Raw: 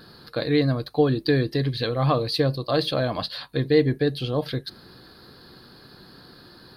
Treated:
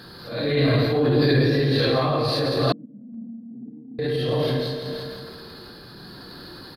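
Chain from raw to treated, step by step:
random phases in long frames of 200 ms
repeating echo 166 ms, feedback 53%, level −6.5 dB
convolution reverb RT60 1.8 s, pre-delay 48 ms, DRR 13.5 dB
brickwall limiter −15 dBFS, peak gain reduction 7.5 dB
0:02.72–0:03.99: flat-topped band-pass 220 Hz, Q 6.3
sample-and-hold tremolo
transient designer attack −5 dB, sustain +4 dB
level +6.5 dB

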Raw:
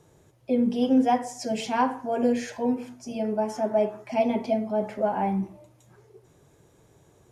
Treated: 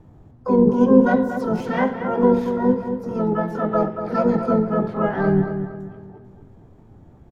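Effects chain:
spectral tilt −4.5 dB per octave
pitch-shifted copies added −4 semitones −5 dB, +7 semitones −15 dB, +12 semitones −3 dB
on a send: feedback echo with a low-pass in the loop 232 ms, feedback 41%, low-pass 3,700 Hz, level −8.5 dB
on the sum: level −4 dB

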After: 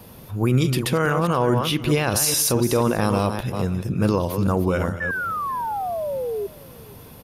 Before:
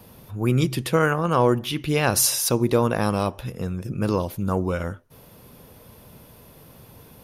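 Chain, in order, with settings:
delay that plays each chunk backwards 213 ms, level −9.5 dB
brickwall limiter −14.5 dBFS, peak gain reduction 7.5 dB
sound drawn into the spectrogram fall, 0:05.00–0:06.47, 390–1,800 Hz −30 dBFS
on a send: single-tap delay 485 ms −22 dB
on the sum: level +4 dB

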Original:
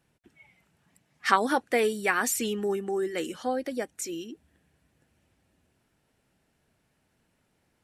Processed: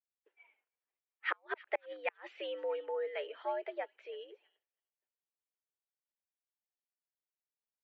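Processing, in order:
gate with flip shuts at −13 dBFS, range −40 dB
single-sideband voice off tune +98 Hz 340–3,000 Hz
on a send: delay with a high-pass on its return 320 ms, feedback 37%, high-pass 2,400 Hz, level −16 dB
on the sum: downward expander −58 dBFS
level −6.5 dB

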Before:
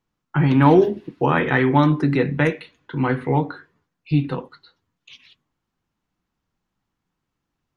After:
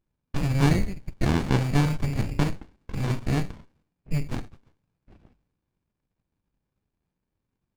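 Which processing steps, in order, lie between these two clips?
treble cut that deepens with the level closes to 1,700 Hz, closed at −16 dBFS
in parallel at −1 dB: downward compressor, threshold −28 dBFS, peak gain reduction 18 dB
on the sum: voice inversion scrambler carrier 2,600 Hz
mains-hum notches 50/100/150/200/250 Hz
windowed peak hold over 65 samples
level −3.5 dB

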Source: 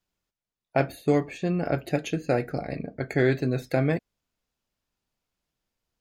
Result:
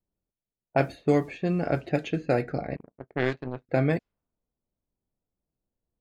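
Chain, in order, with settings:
0:00.79–0:02.26: bit-depth reduction 10 bits, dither none
0:02.76–0:03.69: power curve on the samples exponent 2
low-pass that shuts in the quiet parts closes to 580 Hz, open at −20 dBFS

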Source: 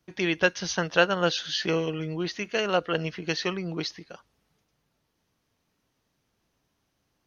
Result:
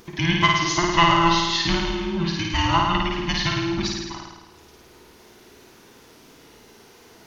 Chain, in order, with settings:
frequency inversion band by band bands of 500 Hz
pitch vibrato 2.9 Hz 60 cents
in parallel at −0.5 dB: upward compression, threshold −29 dBFS
on the sum: flutter between parallel walls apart 9.2 metres, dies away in 1.2 s
level −2.5 dB

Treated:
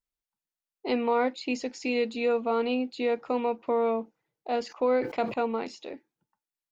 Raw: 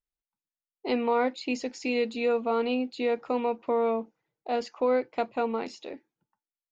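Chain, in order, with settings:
0:04.61–0:05.34: level that may fall only so fast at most 110 dB per second

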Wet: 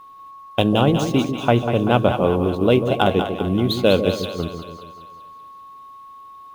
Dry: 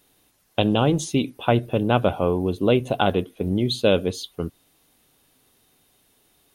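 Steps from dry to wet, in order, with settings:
running median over 5 samples
steady tone 1,100 Hz −43 dBFS
echo with a time of its own for lows and highs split 570 Hz, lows 144 ms, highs 193 ms, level −7.5 dB
level +2.5 dB

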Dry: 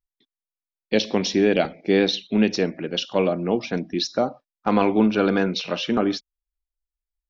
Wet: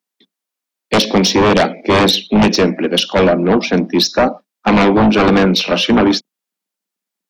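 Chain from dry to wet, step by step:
sub-octave generator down 2 octaves, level +1 dB
Chebyshev high-pass filter 180 Hz, order 6
sine wavefolder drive 10 dB, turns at −6.5 dBFS

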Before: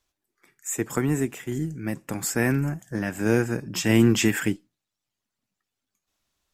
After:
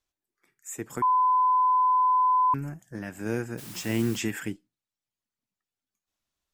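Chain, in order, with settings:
0:01.02–0:02.54: beep over 1,010 Hz −10 dBFS
0:03.57–0:04.17: background noise white −36 dBFS
level −8.5 dB

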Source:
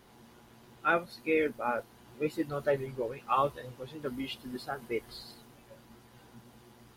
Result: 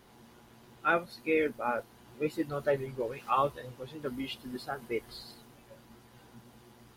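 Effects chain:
0:03.00–0:03.47: one half of a high-frequency compander encoder only

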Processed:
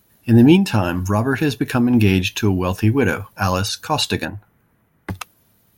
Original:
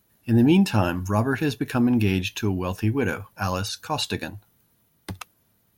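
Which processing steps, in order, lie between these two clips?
0:00.55–0:01.94: downward compressor, threshold −20 dBFS, peak gain reduction 6.5 dB
0:04.25–0:05.10: high shelf with overshoot 2,800 Hz −13 dB, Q 1.5
level +7 dB

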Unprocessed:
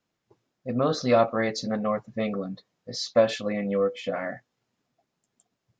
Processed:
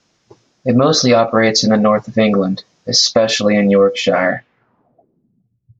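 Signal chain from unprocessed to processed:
downward compressor 6 to 1, threshold −24 dBFS, peak gain reduction 10 dB
low-pass filter sweep 5,900 Hz → 110 Hz, 0:04.17–0:05.53
boost into a limiter +18 dB
level −1 dB

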